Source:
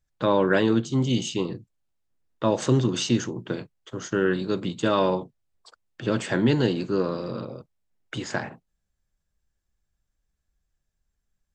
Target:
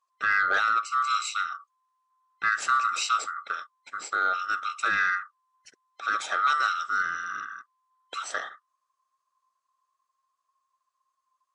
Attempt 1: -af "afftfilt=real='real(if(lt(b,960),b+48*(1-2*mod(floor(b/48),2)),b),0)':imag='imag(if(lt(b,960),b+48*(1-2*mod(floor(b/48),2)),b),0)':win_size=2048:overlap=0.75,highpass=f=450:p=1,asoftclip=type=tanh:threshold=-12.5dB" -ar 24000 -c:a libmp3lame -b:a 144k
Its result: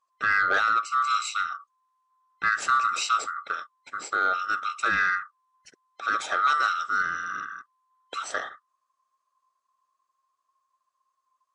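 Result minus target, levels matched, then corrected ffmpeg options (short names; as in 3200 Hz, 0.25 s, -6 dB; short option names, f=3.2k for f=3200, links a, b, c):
500 Hz band +2.5 dB
-af "afftfilt=real='real(if(lt(b,960),b+48*(1-2*mod(floor(b/48),2)),b),0)':imag='imag(if(lt(b,960),b+48*(1-2*mod(floor(b/48),2)),b),0)':win_size=2048:overlap=0.75,highpass=f=990:p=1,asoftclip=type=tanh:threshold=-12.5dB" -ar 24000 -c:a libmp3lame -b:a 144k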